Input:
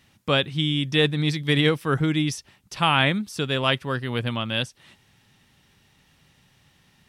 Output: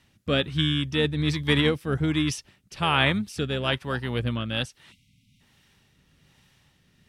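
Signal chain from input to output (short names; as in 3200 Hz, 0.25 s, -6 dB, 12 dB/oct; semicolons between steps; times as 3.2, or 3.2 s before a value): rotary speaker horn 1.2 Hz; harmoniser -12 st -12 dB; spectral delete 4.92–5.4, 280–2000 Hz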